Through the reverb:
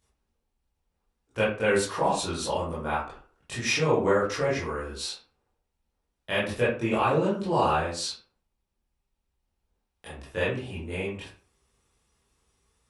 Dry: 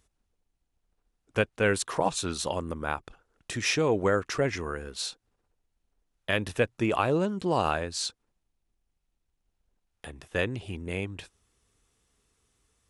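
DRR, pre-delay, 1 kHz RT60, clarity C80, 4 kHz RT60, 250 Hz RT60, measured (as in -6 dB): -9.5 dB, 17 ms, 0.40 s, 9.5 dB, 0.25 s, 0.45 s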